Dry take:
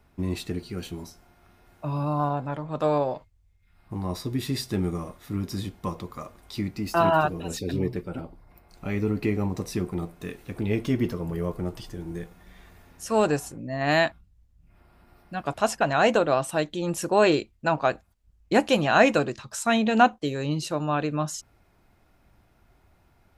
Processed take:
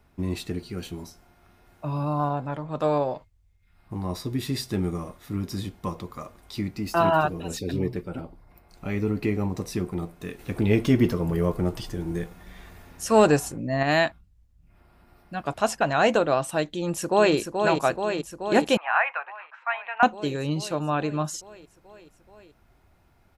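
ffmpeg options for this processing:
ffmpeg -i in.wav -filter_complex "[0:a]asettb=1/sr,asplit=3[link_01][link_02][link_03];[link_01]atrim=end=10.394[link_04];[link_02]atrim=start=10.39:end=13.83,asetpts=PTS-STARTPTS,afade=type=in:duration=0.004:curve=qsin,afade=type=out:start_time=3.436:duration=0.004:curve=qsin,acontrast=28[link_05];[link_03]atrim=start=13.826[link_06];[link_04][link_05]acrossfade=duration=0.004:curve1=hsin:curve2=qsin[link_07];[link_07][link_06]acrossfade=duration=0.004:curve1=qsin:curve2=hsin,asplit=2[link_08][link_09];[link_09]afade=type=in:start_time=16.67:duration=0.01,afade=type=out:start_time=17.35:duration=0.01,aecho=0:1:430|860|1290|1720|2150|2580|3010|3440|3870|4300|4730|5160:0.530884|0.398163|0.298622|0.223967|0.167975|0.125981|0.094486|0.0708645|0.0531484|0.0398613|0.029896|0.022422[link_10];[link_08][link_10]amix=inputs=2:normalize=0,asettb=1/sr,asplit=3[link_11][link_12][link_13];[link_11]atrim=end=18.774[link_14];[link_12]atrim=start=18.77:end=20.03,asetpts=PTS-STARTPTS,afade=type=in:duration=0.004:curve=qsin,afade=type=out:start_time=1.256:duration=0.004:curve=qsin,asuperpass=centerf=1400:order=8:qfactor=0.83[link_15];[link_13]atrim=start=20.026[link_16];[link_14][link_15]acrossfade=duration=0.004:curve1=hsin:curve2=qsin[link_17];[link_17][link_16]acrossfade=duration=0.004:curve1=qsin:curve2=hsin" out.wav

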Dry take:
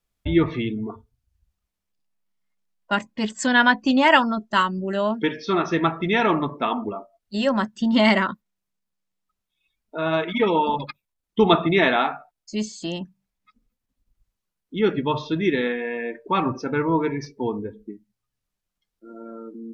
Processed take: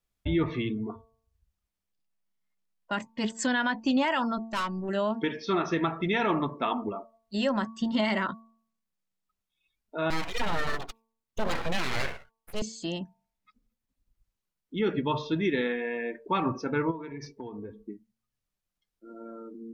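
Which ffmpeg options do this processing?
ffmpeg -i in.wav -filter_complex "[0:a]asettb=1/sr,asplit=3[link_01][link_02][link_03];[link_01]atrim=end=4.384[link_04];[link_02]atrim=start=4.38:end=4.89,asetpts=PTS-STARTPTS,afade=type=in:duration=0.004:curve=qsin,afade=type=out:start_time=0.506:duration=0.004:curve=qsin,aeval=exprs='(tanh(12.6*val(0)+0.25)-tanh(0.25))/12.6':channel_layout=same[link_05];[link_03]atrim=start=4.886[link_06];[link_04][link_05]acrossfade=duration=0.004:curve1=hsin:curve2=qsin[link_07];[link_07][link_06]acrossfade=duration=0.004:curve1=qsin:curve2=hsin,asettb=1/sr,asplit=3[link_08][link_09][link_10];[link_08]atrim=end=10.104[link_11];[link_09]atrim=start=10.1:end=12.62,asetpts=PTS-STARTPTS,afade=type=in:duration=0.004:curve=qsin,afade=type=out:start_time=2.516:duration=0.004:curve=qsin,aeval=exprs='abs(val(0))':channel_layout=same[link_12];[link_10]atrim=start=12.616[link_13];[link_11][link_12]acrossfade=duration=0.004:curve1=hsin:curve2=qsin[link_14];[link_14][link_13]acrossfade=duration=0.004:curve1=qsin:curve2=hsin,asplit=3[link_15][link_16][link_17];[link_15]afade=type=out:start_time=16.9:duration=0.02[link_18];[link_16]acompressor=threshold=-31dB:ratio=10:attack=3.2:release=140:knee=1:detection=peak,afade=type=in:start_time=16.9:duration=0.02,afade=type=out:start_time=17.79:duration=0.02[link_19];[link_17]afade=type=in:start_time=17.79:duration=0.02[link_20];[link_18][link_19][link_20]amix=inputs=3:normalize=0,bandreject=frequency=224.9:width_type=h:width=4,bandreject=frequency=449.8:width_type=h:width=4,bandreject=frequency=674.7:width_type=h:width=4,bandreject=frequency=899.6:width_type=h:width=4,bandreject=frequency=1124.5:width_type=h:width=4,alimiter=limit=-13.5dB:level=0:latency=1:release=67,volume=-4dB" out.wav

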